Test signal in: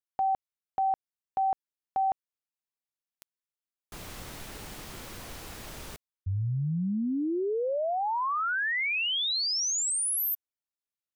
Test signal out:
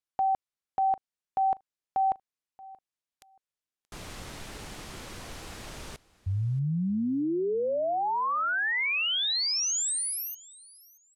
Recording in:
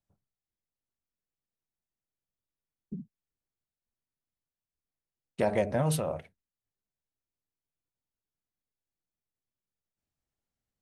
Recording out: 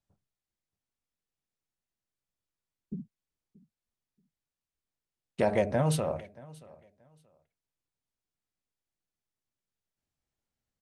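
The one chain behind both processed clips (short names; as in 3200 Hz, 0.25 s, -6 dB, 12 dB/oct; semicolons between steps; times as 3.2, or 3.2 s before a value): LPF 9700 Hz 12 dB/oct; on a send: feedback echo 0.629 s, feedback 21%, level -22 dB; on the sum: gain +1 dB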